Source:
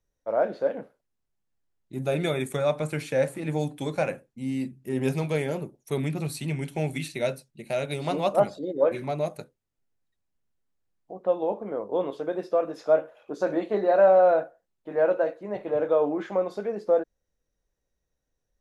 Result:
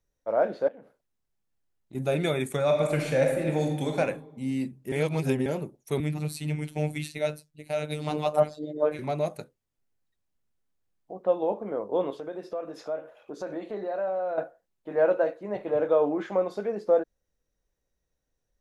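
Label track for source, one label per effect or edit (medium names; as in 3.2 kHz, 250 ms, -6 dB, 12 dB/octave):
0.680000	1.950000	compression 8:1, threshold -44 dBFS
2.640000	3.970000	reverb throw, RT60 1.1 s, DRR 1.5 dB
4.920000	5.460000	reverse
6.000000	8.990000	robot voice 151 Hz
12.180000	14.380000	compression 2:1, threshold -37 dBFS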